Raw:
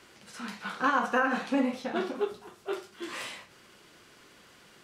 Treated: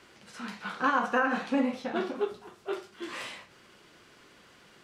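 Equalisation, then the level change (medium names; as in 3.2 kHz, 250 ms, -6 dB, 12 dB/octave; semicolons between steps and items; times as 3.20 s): treble shelf 7.6 kHz -7.5 dB; 0.0 dB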